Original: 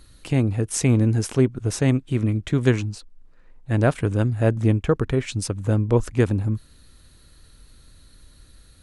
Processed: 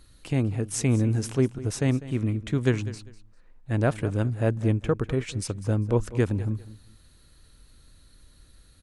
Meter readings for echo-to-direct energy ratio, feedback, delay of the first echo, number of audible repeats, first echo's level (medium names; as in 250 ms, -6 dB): -16.5 dB, 23%, 199 ms, 2, -16.5 dB